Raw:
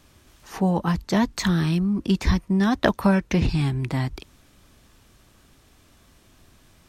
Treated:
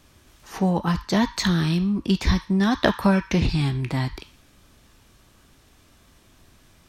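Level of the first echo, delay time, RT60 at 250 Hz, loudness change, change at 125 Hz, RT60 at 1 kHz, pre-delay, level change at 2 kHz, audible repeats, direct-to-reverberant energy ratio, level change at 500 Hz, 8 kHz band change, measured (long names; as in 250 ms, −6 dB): no echo audible, no echo audible, 0.45 s, 0.0 dB, 0.0 dB, 0.45 s, 11 ms, +1.0 dB, no echo audible, 11.5 dB, 0.0 dB, +1.0 dB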